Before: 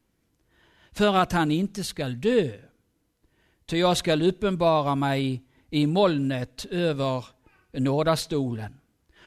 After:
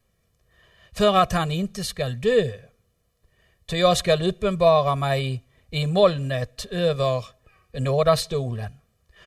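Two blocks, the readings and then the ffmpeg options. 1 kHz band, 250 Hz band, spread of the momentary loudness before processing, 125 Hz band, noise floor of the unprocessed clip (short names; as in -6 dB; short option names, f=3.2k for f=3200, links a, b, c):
+2.5 dB, -3.0 dB, 10 LU, +3.0 dB, -72 dBFS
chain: -af "aecho=1:1:1.7:0.97"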